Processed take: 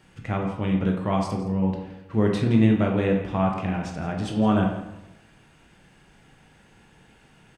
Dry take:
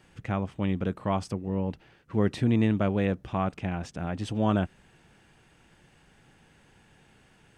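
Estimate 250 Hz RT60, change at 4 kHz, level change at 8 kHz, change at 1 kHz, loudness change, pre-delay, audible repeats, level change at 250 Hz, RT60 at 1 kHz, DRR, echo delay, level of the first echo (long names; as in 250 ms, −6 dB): 0.90 s, +3.5 dB, can't be measured, +4.5 dB, +4.5 dB, 15 ms, 1, +5.5 dB, 0.85 s, 0.5 dB, 168 ms, −14.5 dB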